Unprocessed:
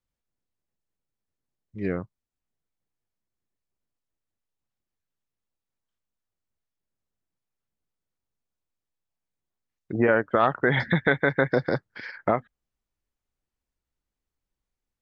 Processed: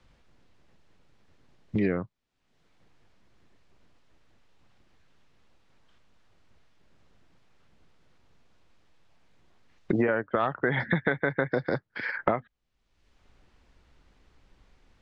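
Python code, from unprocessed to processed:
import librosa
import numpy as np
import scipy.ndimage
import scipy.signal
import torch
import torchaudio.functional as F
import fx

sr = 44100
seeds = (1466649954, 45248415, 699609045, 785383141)

y = scipy.signal.sosfilt(scipy.signal.butter(2, 3800.0, 'lowpass', fs=sr, output='sos'), x)
y = fx.band_squash(y, sr, depth_pct=100)
y = y * librosa.db_to_amplitude(-4.0)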